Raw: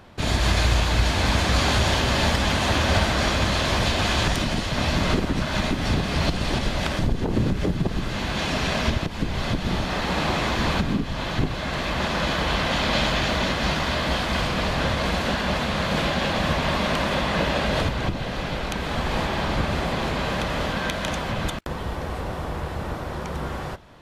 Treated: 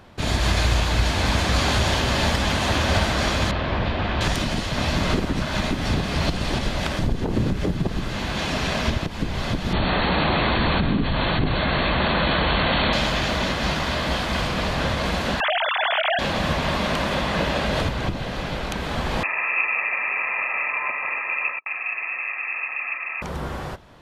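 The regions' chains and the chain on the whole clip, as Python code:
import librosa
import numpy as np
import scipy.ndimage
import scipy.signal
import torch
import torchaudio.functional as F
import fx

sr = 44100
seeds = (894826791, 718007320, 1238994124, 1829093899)

y = fx.chain(x, sr, fx.air_absorb(metres=350.0),
    fx.doppler_dist(depth_ms=0.13), at=(3.51, 4.21))
y = fx.chain(y, sr, fx.brickwall_lowpass(high_hz=4500.0),
    fx.env_flatten(amount_pct=70), at=(9.73, 12.93))
y = fx.chain(y, sr, fx.sine_speech(),
    fx.tilt_eq(slope=2.0),
    fx.env_flatten(amount_pct=50), at=(15.4, 16.19))
y = fx.chain(y, sr, fx.fixed_phaser(hz=1700.0, stages=8),
    fx.small_body(hz=(260.0, 1300.0), ring_ms=35, db=14),
    fx.freq_invert(carrier_hz=2600), at=(19.23, 23.22))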